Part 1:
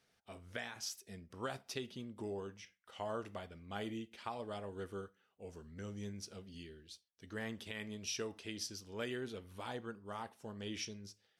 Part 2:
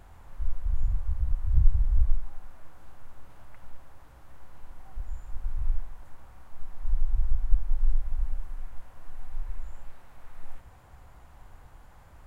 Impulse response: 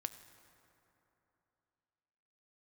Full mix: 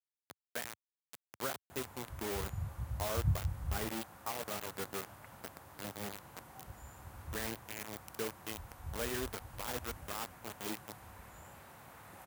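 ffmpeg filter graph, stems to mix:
-filter_complex "[0:a]lowpass=2k,lowshelf=f=330:g=-2.5,acrusher=bits=6:mix=0:aa=0.000001,volume=2dB[a];[1:a]adelay=1700,volume=2dB[b];[a][b]amix=inputs=2:normalize=0,highpass=f=91:w=0.5412,highpass=f=91:w=1.3066,highshelf=f=9.1k:g=11.5"

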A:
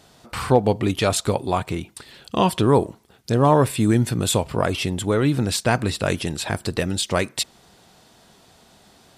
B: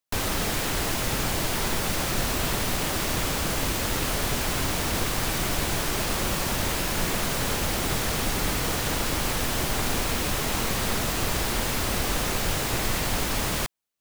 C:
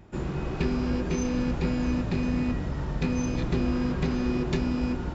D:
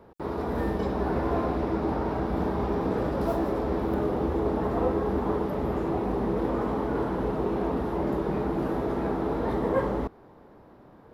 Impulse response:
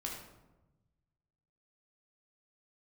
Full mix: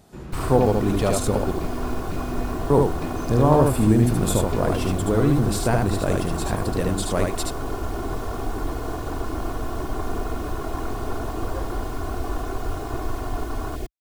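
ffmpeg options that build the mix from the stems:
-filter_complex "[0:a]equalizer=f=3k:w=0.51:g=-10,volume=-1dB,asplit=3[a][b][c];[a]atrim=end=1.51,asetpts=PTS-STARTPTS,afade=t=out:st=1.506:d=0.004:c=hsin[d];[b]atrim=start=1.51:end=2.7,asetpts=PTS-STARTPTS,volume=0[e];[c]atrim=start=2.7,asetpts=PTS-STARTPTS,afade=t=in:d=0.004:c=hsin[f];[d][e][f]concat=n=3:v=0:a=1,asplit=2[g][h];[h]volume=-3dB[i];[1:a]afwtdn=0.0447,aecho=1:1:2.8:0.97,adelay=200,volume=-2.5dB[j];[2:a]volume=-6.5dB[k];[3:a]adelay=1800,volume=-11.5dB[l];[i]aecho=0:1:75:1[m];[g][j][k][l][m]amix=inputs=5:normalize=0"

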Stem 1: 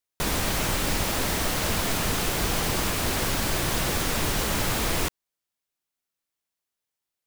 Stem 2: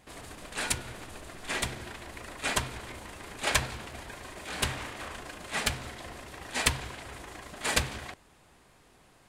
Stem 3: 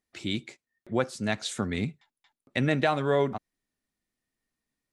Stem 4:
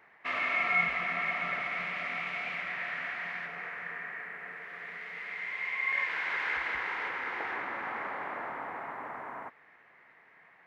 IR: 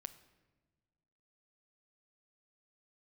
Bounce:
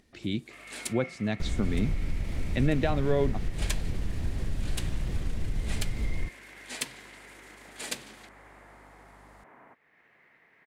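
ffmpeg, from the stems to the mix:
-filter_complex "[0:a]aemphasis=mode=reproduction:type=riaa,acompressor=threshold=-12dB:ratio=6,adelay=1200,volume=-12dB[a];[1:a]highpass=f=190:w=0.5412,highpass=f=190:w=1.3066,aeval=exprs='val(0)+0.00178*(sin(2*PI*50*n/s)+sin(2*PI*2*50*n/s)/2+sin(2*PI*3*50*n/s)/3+sin(2*PI*4*50*n/s)/4+sin(2*PI*5*50*n/s)/5)':c=same,adelay=150,volume=-5.5dB[b];[2:a]aemphasis=mode=reproduction:type=75fm,volume=1dB,asplit=2[c][d];[3:a]agate=range=-33dB:threshold=-56dB:ratio=3:detection=peak,adelay=250,volume=-12dB[e];[d]apad=whole_len=416197[f];[b][f]sidechaincompress=threshold=-35dB:ratio=8:attack=7:release=346[g];[a][g][c][e]amix=inputs=4:normalize=0,equalizer=f=1.1k:w=0.68:g=-9,acompressor=mode=upward:threshold=-46dB:ratio=2.5"

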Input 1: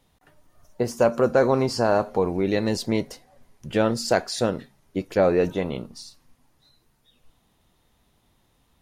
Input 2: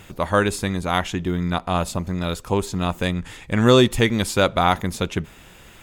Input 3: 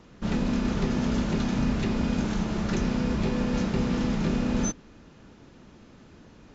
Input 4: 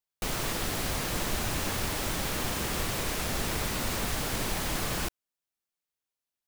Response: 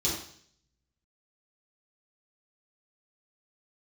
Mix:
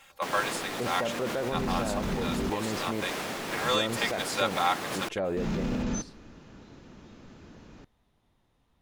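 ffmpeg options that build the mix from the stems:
-filter_complex "[0:a]volume=-5dB[a];[1:a]highpass=f=650:w=0.5412,highpass=f=650:w=1.3066,aecho=1:1:3.7:0.75,volume=-8.5dB[b];[2:a]highshelf=f=4.6k:g=10,adelay=1300,volume=1dB,asplit=3[c][d][e];[c]atrim=end=2.5,asetpts=PTS-STARTPTS,afade=t=out:st=2.496:d=0.004:c=hsin[f];[d]atrim=start=2.5:end=5.37,asetpts=PTS-STARTPTS,volume=0[g];[e]atrim=start=5.37,asetpts=PTS-STARTPTS,afade=t=in:d=0.004:c=hsin[h];[f][g][h]concat=n=3:v=0:a=1[i];[3:a]highpass=220,tremolo=f=2.2:d=0.3,volume=2.5dB[j];[a][i][j]amix=inputs=3:normalize=0,highshelf=f=4.3k:g=-9,alimiter=limit=-22.5dB:level=0:latency=1:release=30,volume=0dB[k];[b][k]amix=inputs=2:normalize=0,highshelf=f=11k:g=-4.5"

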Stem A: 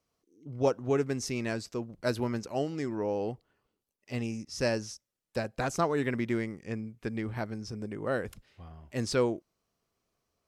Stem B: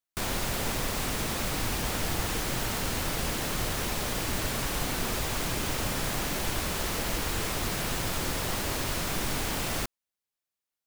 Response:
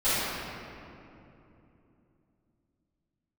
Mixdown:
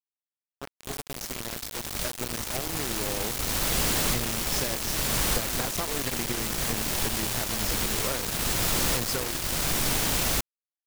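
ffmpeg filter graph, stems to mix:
-filter_complex "[0:a]equalizer=f=260:t=o:w=0.37:g=-2.5,acompressor=threshold=-30dB:ratio=16,volume=-2dB,asplit=2[a][b];[1:a]equalizer=f=79:t=o:w=0.2:g=-7,volume=27dB,asoftclip=hard,volume=-27dB,aeval=exprs='val(0)+0.00891*(sin(2*PI*50*n/s)+sin(2*PI*2*50*n/s)/2+sin(2*PI*3*50*n/s)/3+sin(2*PI*4*50*n/s)/4+sin(2*PI*5*50*n/s)/5)':c=same,adelay=550,volume=1.5dB[c];[b]apad=whole_len=503550[d];[c][d]sidechaincompress=threshold=-39dB:ratio=4:attack=46:release=937[e];[a][e]amix=inputs=2:normalize=0,dynaudnorm=f=940:g=5:m=4dB,aeval=exprs='val(0)*gte(abs(val(0)),0.0422)':c=same,adynamicequalizer=threshold=0.00794:dfrequency=3000:dqfactor=0.7:tfrequency=3000:tqfactor=0.7:attack=5:release=100:ratio=0.375:range=2:mode=boostabove:tftype=highshelf"

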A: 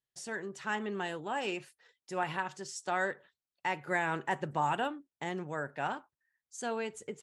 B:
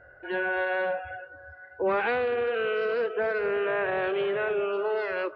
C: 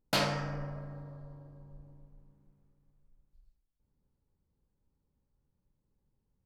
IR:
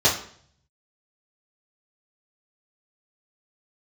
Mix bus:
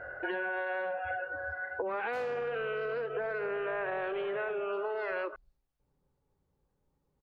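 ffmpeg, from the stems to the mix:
-filter_complex "[1:a]acompressor=threshold=-34dB:ratio=6,volume=2.5dB[a];[2:a]asoftclip=type=tanh:threshold=-35dB,acompressor=threshold=-59dB:ratio=1.5,adelay=2000,volume=-1.5dB,asplit=2[b][c];[c]volume=-23dB[d];[b]alimiter=level_in=24.5dB:limit=-24dB:level=0:latency=1,volume=-24.5dB,volume=0dB[e];[3:a]atrim=start_sample=2205[f];[d][f]afir=irnorm=-1:irlink=0[g];[a][e][g]amix=inputs=3:normalize=0,equalizer=f=940:w=0.38:g=8.5,acompressor=threshold=-32dB:ratio=6"

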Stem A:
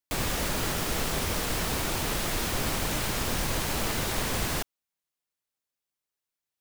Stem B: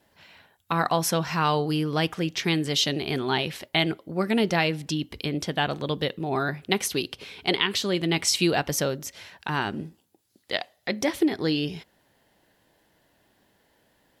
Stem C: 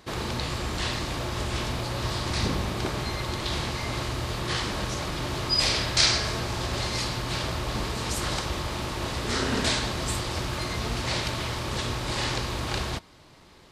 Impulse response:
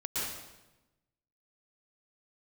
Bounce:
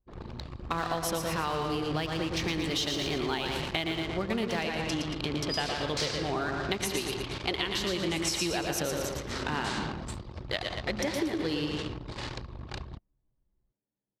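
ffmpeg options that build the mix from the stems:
-filter_complex "[0:a]volume=-19dB[a];[1:a]highpass=170,volume=-3dB,asplit=3[b][c][d];[c]volume=-12.5dB[e];[d]volume=-4dB[f];[2:a]acontrast=67,volume=-14dB[g];[3:a]atrim=start_sample=2205[h];[e][h]afir=irnorm=-1:irlink=0[i];[f]aecho=0:1:115|230|345|460|575|690|805|920:1|0.53|0.281|0.149|0.0789|0.0418|0.0222|0.0117[j];[a][b][g][i][j]amix=inputs=5:normalize=0,anlmdn=6.31,acompressor=threshold=-27dB:ratio=6"

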